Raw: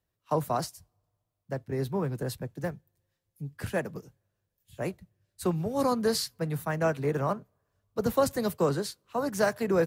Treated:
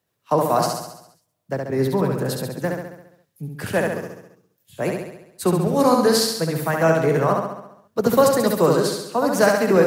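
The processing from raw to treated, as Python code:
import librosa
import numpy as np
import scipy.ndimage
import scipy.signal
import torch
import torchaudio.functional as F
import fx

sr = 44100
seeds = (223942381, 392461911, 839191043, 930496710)

y = scipy.signal.sosfilt(scipy.signal.butter(2, 150.0, 'highpass', fs=sr, output='sos'), x)
y = fx.echo_feedback(y, sr, ms=68, feedback_pct=57, wet_db=-3.5)
y = y * librosa.db_to_amplitude(8.5)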